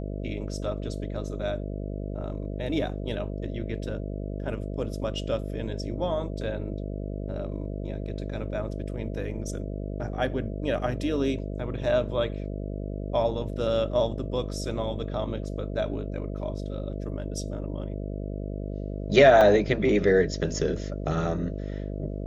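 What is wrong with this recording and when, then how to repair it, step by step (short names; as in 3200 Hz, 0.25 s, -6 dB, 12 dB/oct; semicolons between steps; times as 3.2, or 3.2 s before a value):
buzz 50 Hz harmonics 13 -33 dBFS
19.41 gap 2.6 ms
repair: de-hum 50 Hz, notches 13; interpolate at 19.41, 2.6 ms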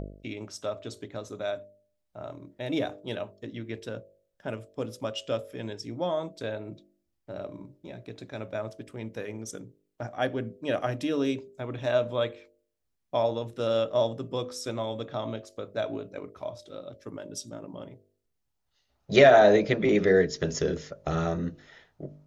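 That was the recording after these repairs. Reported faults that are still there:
none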